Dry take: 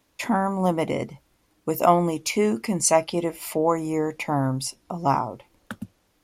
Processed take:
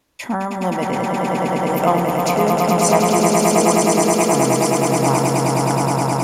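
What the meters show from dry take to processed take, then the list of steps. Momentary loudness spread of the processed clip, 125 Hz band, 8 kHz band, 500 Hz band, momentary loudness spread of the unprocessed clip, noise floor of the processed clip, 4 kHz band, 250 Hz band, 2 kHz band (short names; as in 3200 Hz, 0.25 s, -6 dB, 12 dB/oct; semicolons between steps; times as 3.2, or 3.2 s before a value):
7 LU, +8.5 dB, +8.5 dB, +8.0 dB, 16 LU, -25 dBFS, +8.5 dB, +7.5 dB, +8.5 dB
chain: swelling echo 0.105 s, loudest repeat 8, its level -4 dB; wow and flutter 17 cents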